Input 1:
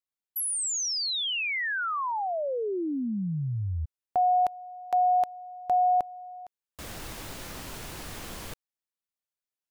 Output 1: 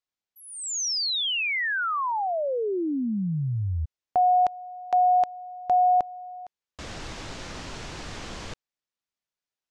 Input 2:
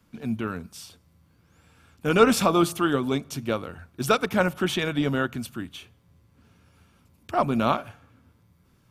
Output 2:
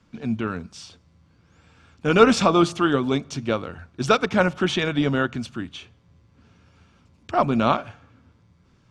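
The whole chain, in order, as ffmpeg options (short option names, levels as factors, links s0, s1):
-af "lowpass=f=6900:w=0.5412,lowpass=f=6900:w=1.3066,volume=1.41"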